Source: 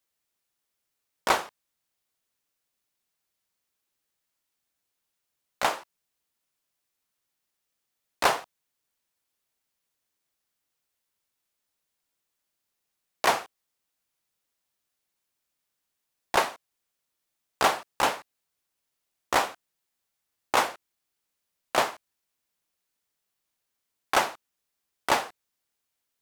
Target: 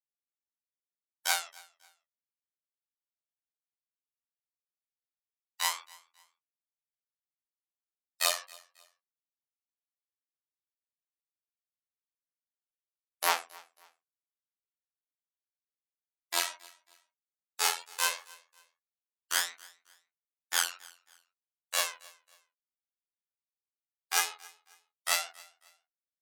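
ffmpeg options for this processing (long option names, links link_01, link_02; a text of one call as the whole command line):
ffmpeg -i in.wav -filter_complex "[0:a]afftfilt=real='re*gte(hypot(re,im),0.00398)':imag='im*gte(hypot(re,im),0.00398)':win_size=1024:overlap=0.75,aphaser=in_gain=1:out_gain=1:delay=3.3:decay=0.68:speed=0.15:type=triangular,highshelf=frequency=7600:gain=-5,asplit=2[link_01][link_02];[link_02]acompressor=threshold=-32dB:ratio=16,volume=2.5dB[link_03];[link_01][link_03]amix=inputs=2:normalize=0,afftfilt=real='hypot(re,im)*cos(PI*b)':imag='0':win_size=2048:overlap=0.75,aderivative,flanger=delay=18:depth=5:speed=2.1,asplit=2[link_04][link_05];[link_05]aecho=0:1:271|542:0.0668|0.0214[link_06];[link_04][link_06]amix=inputs=2:normalize=0,volume=9dB" out.wav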